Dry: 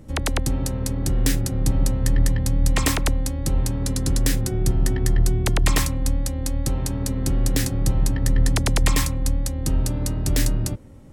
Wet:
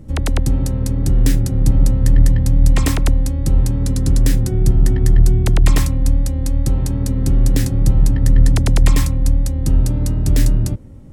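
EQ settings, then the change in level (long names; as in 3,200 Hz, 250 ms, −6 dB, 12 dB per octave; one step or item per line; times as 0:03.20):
low-shelf EQ 350 Hz +9.5 dB
−1.5 dB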